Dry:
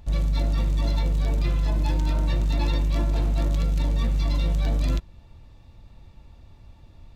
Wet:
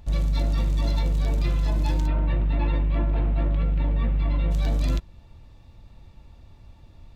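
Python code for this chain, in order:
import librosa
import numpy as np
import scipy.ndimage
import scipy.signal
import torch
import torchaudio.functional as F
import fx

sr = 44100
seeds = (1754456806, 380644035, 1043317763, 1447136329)

y = fx.lowpass(x, sr, hz=2800.0, slope=24, at=(2.06, 4.5), fade=0.02)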